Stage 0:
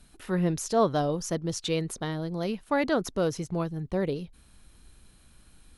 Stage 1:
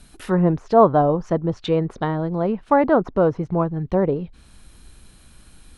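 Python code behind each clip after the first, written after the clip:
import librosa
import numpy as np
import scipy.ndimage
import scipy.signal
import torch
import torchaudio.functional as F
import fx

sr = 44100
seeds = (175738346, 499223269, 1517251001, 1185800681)

y = fx.env_lowpass_down(x, sr, base_hz=1200.0, full_db=-26.5)
y = fx.dynamic_eq(y, sr, hz=950.0, q=1.3, threshold_db=-43.0, ratio=4.0, max_db=6)
y = y * librosa.db_to_amplitude(8.0)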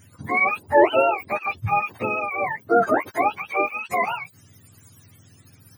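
y = fx.octave_mirror(x, sr, pivot_hz=630.0)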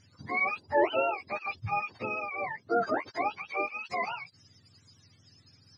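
y = fx.ladder_lowpass(x, sr, hz=5200.0, resonance_pct=80)
y = y * librosa.db_to_amplitude(2.5)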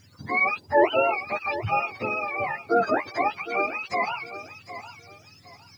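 y = fx.quant_dither(x, sr, seeds[0], bits=12, dither='none')
y = fx.echo_feedback(y, sr, ms=759, feedback_pct=27, wet_db=-13.0)
y = y * librosa.db_to_amplitude(6.0)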